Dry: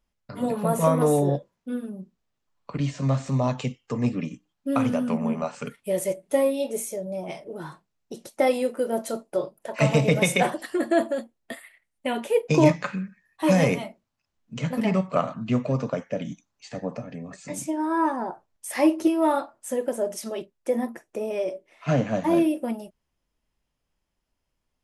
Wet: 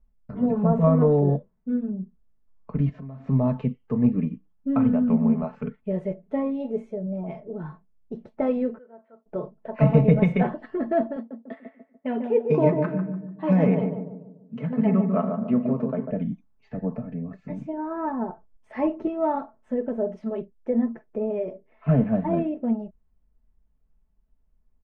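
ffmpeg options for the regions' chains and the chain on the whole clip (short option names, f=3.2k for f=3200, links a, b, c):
-filter_complex "[0:a]asettb=1/sr,asplit=3[a][b][c];[a]atrim=end=2.894[d];[b]atrim=start=2.89:end=3.29,asetpts=PTS-STARTPTS,afade=t=in:d=0.004:c=qsin,afade=t=out:st=0.396:d=0.004:c=qsin,lowshelf=f=140:g=-7,acompressor=threshold=-38dB:ratio=6:attack=3.2:release=140:knee=1:detection=peak[e];[c]atrim=start=3.286[f];[d][e]acrossfade=d=0.004:c1=hsin:c2=qsin[g];[g][f]acrossfade=d=0.004:c1=qsin:c2=hsin,asettb=1/sr,asplit=3[h][i][j];[h]atrim=end=8.784[k];[i]atrim=start=8.78:end=9.26,asetpts=PTS-STARTPTS,afade=t=in:d=0.004:c=qsin,afade=t=out:st=0.476:d=0.004:c=qsin,lowpass=f=1.9k:w=0.5412,lowpass=f=1.9k:w=1.3066,aderivative[l];[j]atrim=start=9.256[m];[k][l]acrossfade=d=0.004:c1=hsin:c2=qsin[n];[n][m]acrossfade=d=0.004:c1=qsin:c2=hsin,asettb=1/sr,asplit=3[o][p][q];[o]atrim=end=11.164[r];[p]atrim=start=11.16:end=16.11,asetpts=PTS-STARTPTS,afade=t=in:d=0.004:c=qsin,afade=t=out:st=4.946:d=0.004:c=qsin,highpass=220,asplit=2[s][t];[t]adelay=146,lowpass=f=850:p=1,volume=-4dB,asplit=2[u][v];[v]adelay=146,lowpass=f=850:p=1,volume=0.48,asplit=2[w][x];[x]adelay=146,lowpass=f=850:p=1,volume=0.48,asplit=2[y][z];[z]adelay=146,lowpass=f=850:p=1,volume=0.48,asplit=2[aa][ab];[ab]adelay=146,lowpass=f=850:p=1,volume=0.48,asplit=2[ac][ad];[ad]adelay=146,lowpass=f=850:p=1,volume=0.48[ae];[s][u][w][y][aa][ac][ae]amix=inputs=7:normalize=0,atrim=end_sample=218295[af];[q]atrim=start=16.106[ag];[r][af]acrossfade=d=0.004:c1=hsin:c2=qsin[ah];[ah][ag]acrossfade=d=0.004:c1=qsin:c2=hsin,lowpass=2k,aemphasis=mode=reproduction:type=riaa,aecho=1:1:4.6:0.59,volume=-5dB"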